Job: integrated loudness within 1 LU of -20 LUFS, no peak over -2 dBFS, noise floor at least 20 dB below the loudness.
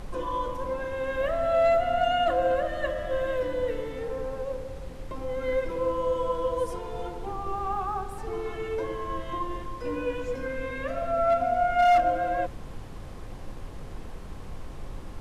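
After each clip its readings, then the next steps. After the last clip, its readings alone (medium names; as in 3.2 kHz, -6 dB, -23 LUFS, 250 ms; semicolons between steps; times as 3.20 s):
clipped samples 0.3%; clipping level -16.0 dBFS; noise floor -39 dBFS; noise floor target -48 dBFS; loudness -28.0 LUFS; peak level -16.0 dBFS; loudness target -20.0 LUFS
-> clip repair -16 dBFS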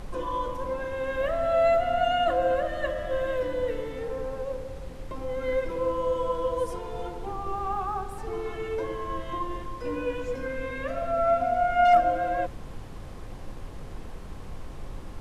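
clipped samples 0.0%; noise floor -39 dBFS; noise floor target -48 dBFS
-> noise print and reduce 9 dB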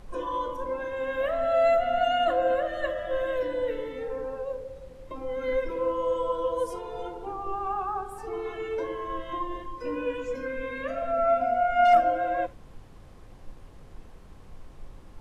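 noise floor -48 dBFS; loudness -28.0 LUFS; peak level -9.0 dBFS; loudness target -20.0 LUFS
-> trim +8 dB; peak limiter -2 dBFS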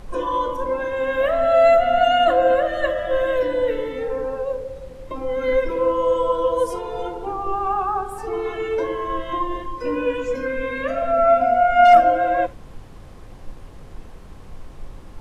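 loudness -20.0 LUFS; peak level -2.0 dBFS; noise floor -40 dBFS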